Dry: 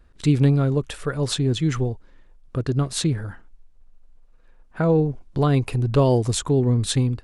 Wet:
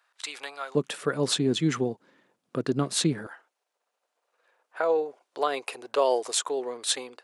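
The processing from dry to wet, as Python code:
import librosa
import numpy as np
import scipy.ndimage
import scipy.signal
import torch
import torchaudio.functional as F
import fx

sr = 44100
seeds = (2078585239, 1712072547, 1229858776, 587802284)

y = fx.highpass(x, sr, hz=fx.steps((0.0, 780.0), (0.75, 180.0), (3.27, 490.0)), slope=24)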